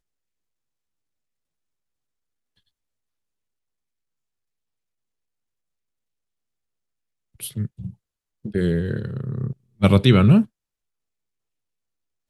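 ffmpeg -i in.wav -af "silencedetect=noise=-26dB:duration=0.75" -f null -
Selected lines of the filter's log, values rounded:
silence_start: 0.00
silence_end: 7.43 | silence_duration: 7.43
silence_start: 10.43
silence_end: 12.30 | silence_duration: 1.86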